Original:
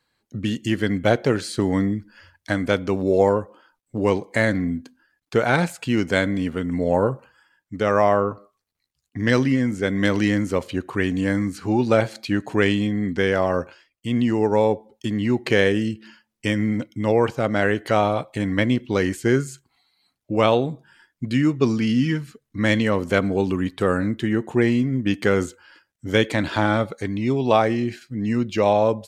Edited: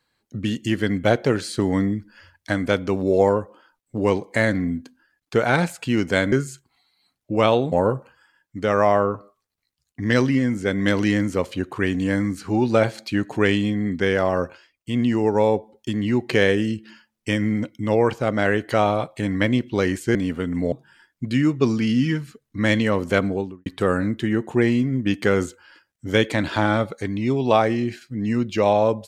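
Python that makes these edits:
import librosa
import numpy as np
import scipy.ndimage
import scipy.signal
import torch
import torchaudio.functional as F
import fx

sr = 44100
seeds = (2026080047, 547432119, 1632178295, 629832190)

y = fx.studio_fade_out(x, sr, start_s=23.2, length_s=0.46)
y = fx.edit(y, sr, fx.swap(start_s=6.32, length_s=0.57, other_s=19.32, other_length_s=1.4), tone=tone)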